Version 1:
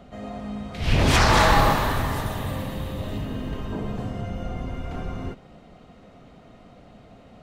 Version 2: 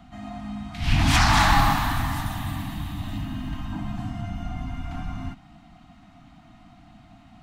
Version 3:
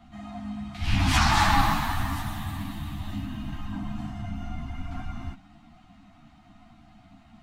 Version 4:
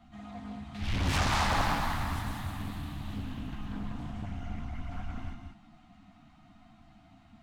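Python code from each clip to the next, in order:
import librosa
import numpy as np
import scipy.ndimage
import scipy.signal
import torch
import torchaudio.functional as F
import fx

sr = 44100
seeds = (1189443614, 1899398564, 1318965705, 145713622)

y1 = scipy.signal.sosfilt(scipy.signal.ellip(3, 1.0, 40, [310.0, 700.0], 'bandstop', fs=sr, output='sos'), x)
y2 = fx.ensemble(y1, sr)
y3 = 10.0 ** (-17.5 / 20.0) * np.tanh(y2 / 10.0 ** (-17.5 / 20.0))
y3 = y3 + 10.0 ** (-5.0 / 20.0) * np.pad(y3, (int(185 * sr / 1000.0), 0))[:len(y3)]
y3 = fx.doppler_dist(y3, sr, depth_ms=0.73)
y3 = y3 * librosa.db_to_amplitude(-5.0)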